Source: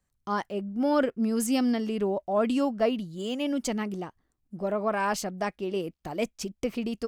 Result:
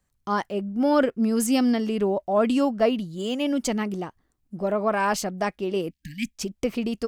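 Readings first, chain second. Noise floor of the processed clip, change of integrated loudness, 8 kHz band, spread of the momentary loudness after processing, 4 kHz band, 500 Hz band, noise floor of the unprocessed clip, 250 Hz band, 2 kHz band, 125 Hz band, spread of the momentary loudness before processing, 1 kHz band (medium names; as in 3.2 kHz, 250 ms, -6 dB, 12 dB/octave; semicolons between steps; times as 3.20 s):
-73 dBFS, +4.0 dB, +4.0 dB, 10 LU, +4.0 dB, +4.0 dB, -77 dBFS, +4.0 dB, +4.0 dB, +4.0 dB, 8 LU, +4.0 dB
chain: spectral selection erased 5.90–6.37 s, 300–1600 Hz; trim +4 dB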